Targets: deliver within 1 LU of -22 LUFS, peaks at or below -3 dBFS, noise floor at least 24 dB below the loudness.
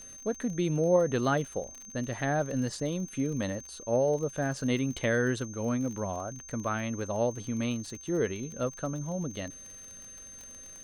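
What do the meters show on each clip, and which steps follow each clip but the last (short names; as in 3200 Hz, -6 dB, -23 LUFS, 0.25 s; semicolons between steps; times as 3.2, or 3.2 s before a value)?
ticks 41/s; steady tone 6300 Hz; tone level -45 dBFS; loudness -31.0 LUFS; peak -13.5 dBFS; loudness target -22.0 LUFS
-> de-click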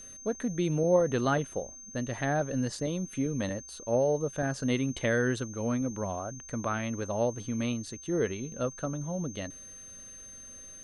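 ticks 0.092/s; steady tone 6300 Hz; tone level -45 dBFS
-> notch 6300 Hz, Q 30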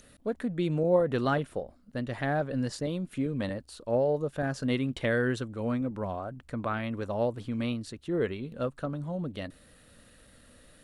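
steady tone none; loudness -31.0 LUFS; peak -13.5 dBFS; loudness target -22.0 LUFS
-> gain +9 dB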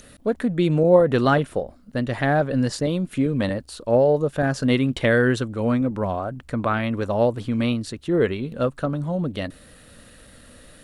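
loudness -22.0 LUFS; peak -4.5 dBFS; noise floor -50 dBFS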